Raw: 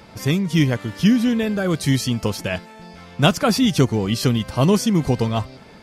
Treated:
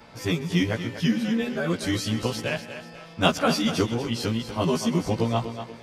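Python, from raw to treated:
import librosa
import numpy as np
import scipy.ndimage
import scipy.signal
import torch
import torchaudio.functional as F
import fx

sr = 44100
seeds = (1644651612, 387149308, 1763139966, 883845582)

y = fx.frame_reverse(x, sr, frame_ms=35.0)
y = fx.low_shelf(y, sr, hz=200.0, db=-7.0)
y = fx.echo_thinned(y, sr, ms=242, feedback_pct=39, hz=160.0, wet_db=-10)
y = fx.rider(y, sr, range_db=5, speed_s=2.0)
y = fx.high_shelf(y, sr, hz=8500.0, db=-8.5)
y = y + 10.0 ** (-19.0 / 20.0) * np.pad(y, (int(130 * sr / 1000.0), 0))[:len(y)]
y = y * librosa.db_to_amplitude(-1.5)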